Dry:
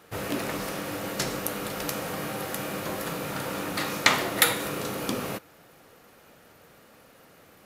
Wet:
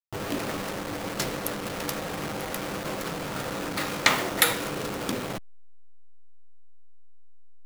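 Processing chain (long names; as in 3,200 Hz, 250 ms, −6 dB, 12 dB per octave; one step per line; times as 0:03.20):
hold until the input has moved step −28.5 dBFS
saturating transformer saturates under 760 Hz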